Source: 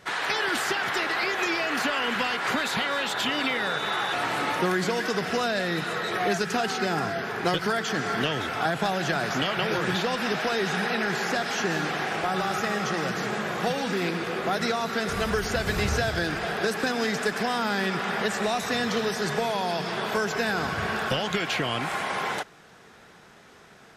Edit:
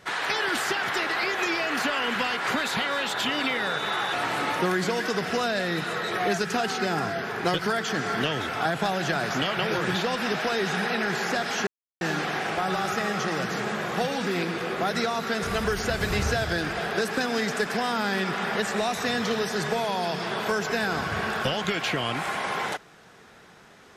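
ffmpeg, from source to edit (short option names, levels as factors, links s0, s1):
-filter_complex "[0:a]asplit=2[s0][s1];[s0]atrim=end=11.67,asetpts=PTS-STARTPTS,afade=t=out:st=11.666:d=0.004:c=hsin,apad=pad_dur=0.34[s2];[s1]atrim=start=11.67,asetpts=PTS-STARTPTS,afade=t=in:d=0.004:c=hsin[s3];[s2][s3]concat=n=2:v=0:a=1"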